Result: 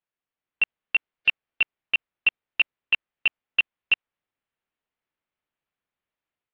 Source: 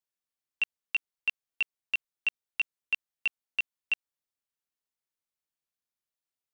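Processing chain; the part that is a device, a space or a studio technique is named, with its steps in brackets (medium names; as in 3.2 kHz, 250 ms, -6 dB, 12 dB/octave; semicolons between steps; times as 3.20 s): action camera in a waterproof case (low-pass 3 kHz 24 dB/octave; level rider gain up to 5 dB; trim +4 dB; AAC 48 kbps 48 kHz)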